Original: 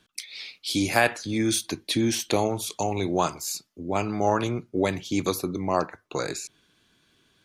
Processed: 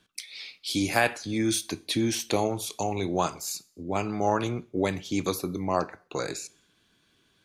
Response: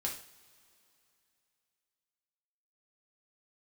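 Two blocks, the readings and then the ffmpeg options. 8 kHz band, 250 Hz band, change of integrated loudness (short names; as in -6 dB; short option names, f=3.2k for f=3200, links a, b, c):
-2.0 dB, -2.0 dB, -2.0 dB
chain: -filter_complex "[0:a]asplit=2[a][b];[1:a]atrim=start_sample=2205,afade=t=out:st=0.34:d=0.01,atrim=end_sample=15435,asetrate=48510,aresample=44100[c];[b][c]afir=irnorm=-1:irlink=0,volume=-13.5dB[d];[a][d]amix=inputs=2:normalize=0,volume=-3.5dB"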